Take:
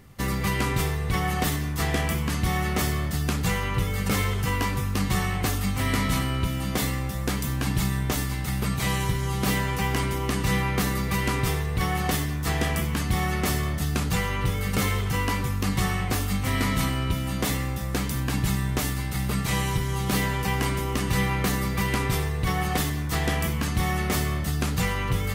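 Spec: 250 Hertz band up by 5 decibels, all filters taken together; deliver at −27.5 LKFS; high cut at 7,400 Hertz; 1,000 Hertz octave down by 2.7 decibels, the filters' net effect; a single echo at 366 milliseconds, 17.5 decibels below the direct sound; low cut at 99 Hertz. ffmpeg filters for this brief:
ffmpeg -i in.wav -af "highpass=99,lowpass=7400,equalizer=frequency=250:width_type=o:gain=7.5,equalizer=frequency=1000:width_type=o:gain=-4,aecho=1:1:366:0.133,volume=-2dB" out.wav

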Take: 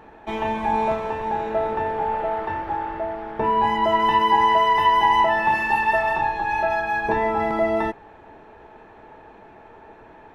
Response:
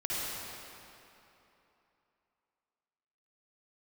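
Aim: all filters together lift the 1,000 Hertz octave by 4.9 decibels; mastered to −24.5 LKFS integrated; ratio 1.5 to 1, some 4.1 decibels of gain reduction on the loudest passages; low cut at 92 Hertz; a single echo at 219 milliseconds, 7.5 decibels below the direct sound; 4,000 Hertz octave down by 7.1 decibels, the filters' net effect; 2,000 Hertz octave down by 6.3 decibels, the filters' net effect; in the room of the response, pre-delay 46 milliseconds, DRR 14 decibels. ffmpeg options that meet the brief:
-filter_complex "[0:a]highpass=92,equalizer=frequency=1000:width_type=o:gain=7,equalizer=frequency=2000:width_type=o:gain=-8,equalizer=frequency=4000:width_type=o:gain=-7,acompressor=threshold=-20dB:ratio=1.5,aecho=1:1:219:0.422,asplit=2[link_01][link_02];[1:a]atrim=start_sample=2205,adelay=46[link_03];[link_02][link_03]afir=irnorm=-1:irlink=0,volume=-21dB[link_04];[link_01][link_04]amix=inputs=2:normalize=0,volume=-5dB"

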